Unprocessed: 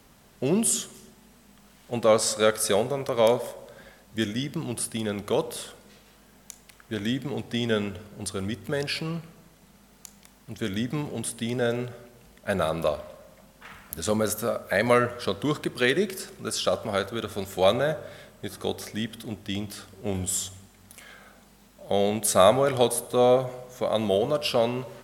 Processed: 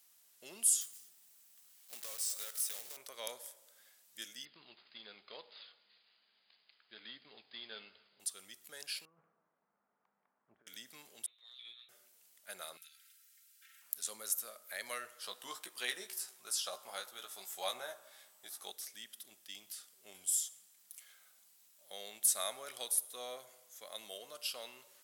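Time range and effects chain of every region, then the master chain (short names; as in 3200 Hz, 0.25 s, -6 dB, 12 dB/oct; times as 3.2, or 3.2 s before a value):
0.81–2.97 block floating point 3-bit + compressor 3:1, threshold -28 dBFS
4.45–8.2 CVSD 32 kbps + brick-wall FIR low-pass 5000 Hz + doubler 14 ms -13 dB
9.05–10.67 LPF 1300 Hz 24 dB/oct + negative-ratio compressor -34 dBFS, ratio -0.5
11.26–11.89 inverted band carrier 3900 Hz + transient shaper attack -11 dB, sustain -5 dB + resonator 120 Hz, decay 0.18 s, mix 100%
12.77–13.82 brick-wall FIR band-stop 170–1300 Hz + comb 3.8 ms, depth 73% + compressor 5:1, threshold -43 dBFS
15.23–18.71 bell 860 Hz +10.5 dB 0.81 oct + doubler 16 ms -5.5 dB
whole clip: HPF 150 Hz 6 dB/oct; differentiator; gain -5.5 dB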